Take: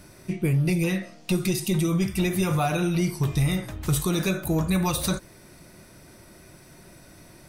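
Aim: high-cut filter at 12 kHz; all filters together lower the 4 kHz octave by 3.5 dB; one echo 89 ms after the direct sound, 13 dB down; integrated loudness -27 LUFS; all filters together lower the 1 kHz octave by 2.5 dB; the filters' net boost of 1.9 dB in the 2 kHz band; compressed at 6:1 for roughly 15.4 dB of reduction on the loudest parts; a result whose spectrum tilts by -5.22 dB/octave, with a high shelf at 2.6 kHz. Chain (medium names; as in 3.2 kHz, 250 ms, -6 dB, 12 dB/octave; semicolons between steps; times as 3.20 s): low-pass 12 kHz; peaking EQ 1 kHz -5 dB; peaking EQ 2 kHz +4.5 dB; treble shelf 2.6 kHz +3.5 dB; peaking EQ 4 kHz -8 dB; compression 6:1, threshold -37 dBFS; delay 89 ms -13 dB; trim +13.5 dB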